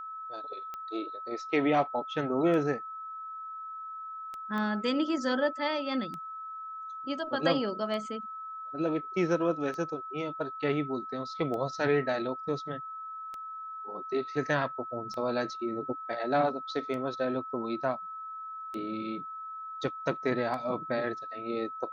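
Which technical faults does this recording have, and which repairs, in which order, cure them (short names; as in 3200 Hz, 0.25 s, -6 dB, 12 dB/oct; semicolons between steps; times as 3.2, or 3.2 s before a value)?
tick 33 1/3 rpm -26 dBFS
tone 1300 Hz -38 dBFS
4.58 pop -24 dBFS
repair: de-click; notch 1300 Hz, Q 30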